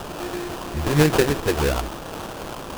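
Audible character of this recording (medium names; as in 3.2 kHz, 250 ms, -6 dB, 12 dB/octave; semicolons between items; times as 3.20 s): a quantiser's noise floor 6-bit, dither triangular; phasing stages 4, 3.1 Hz, lowest notch 160–1700 Hz; aliases and images of a low sample rate 2.1 kHz, jitter 20%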